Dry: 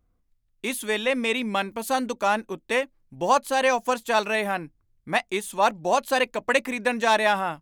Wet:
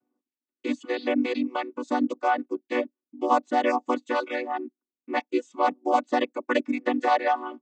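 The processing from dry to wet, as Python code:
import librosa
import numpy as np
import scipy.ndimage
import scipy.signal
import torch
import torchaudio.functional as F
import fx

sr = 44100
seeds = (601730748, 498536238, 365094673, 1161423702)

y = fx.chord_vocoder(x, sr, chord='minor triad', root=59)
y = fx.dereverb_blind(y, sr, rt60_s=0.68)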